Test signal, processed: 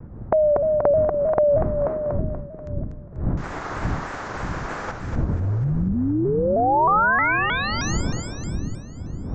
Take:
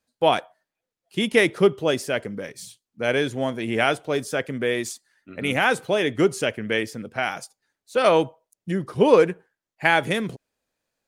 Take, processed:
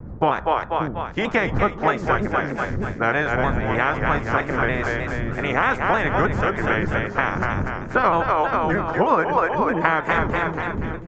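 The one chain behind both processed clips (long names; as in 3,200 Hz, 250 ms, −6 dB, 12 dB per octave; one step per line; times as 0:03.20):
ceiling on every frequency bin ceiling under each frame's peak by 16 dB
wind on the microphone 150 Hz −31 dBFS
high shelf with overshoot 2,200 Hz −11.5 dB, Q 1.5
downsampling to 16,000 Hz
on a send: echo with a time of its own for lows and highs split 350 Hz, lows 580 ms, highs 242 ms, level −5.5 dB
on the sum: downward compressor 6 to 1, threshold −22 dBFS
dynamic equaliser 1,000 Hz, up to +5 dB, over −39 dBFS, Q 0.75
pitch modulation by a square or saw wave saw down 3.2 Hz, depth 100 cents
level +3.5 dB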